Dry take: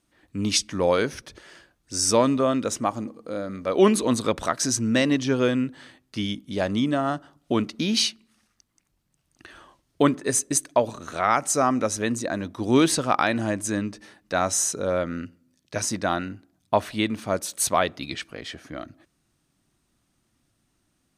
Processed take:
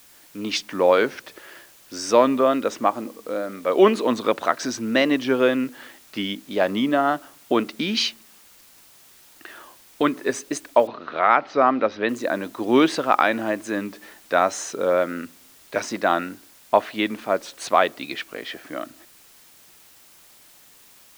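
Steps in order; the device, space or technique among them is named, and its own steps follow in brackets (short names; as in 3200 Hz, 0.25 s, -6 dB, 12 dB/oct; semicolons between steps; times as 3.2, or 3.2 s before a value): dictaphone (BPF 310–3200 Hz; AGC gain up to 6 dB; wow and flutter; white noise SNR 28 dB); 7.67–10.16 dynamic EQ 620 Hz, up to -7 dB, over -35 dBFS, Q 0.99; 10.87–12.09 steep low-pass 4500 Hz 36 dB/oct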